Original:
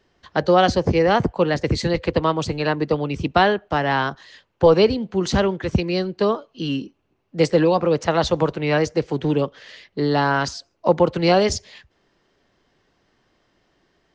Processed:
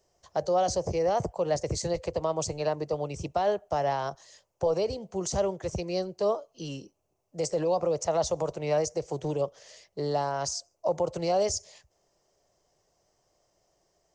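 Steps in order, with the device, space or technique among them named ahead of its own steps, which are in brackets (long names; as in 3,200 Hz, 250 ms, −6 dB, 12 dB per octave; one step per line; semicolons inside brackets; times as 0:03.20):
over-bright horn tweeter (high shelf with overshoot 4,500 Hz +12.5 dB, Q 1.5; brickwall limiter −12 dBFS, peak gain reduction 10.5 dB)
graphic EQ with 15 bands 250 Hz −11 dB, 630 Hz +9 dB, 1,600 Hz −8 dB, 4,000 Hz −6 dB
level −8 dB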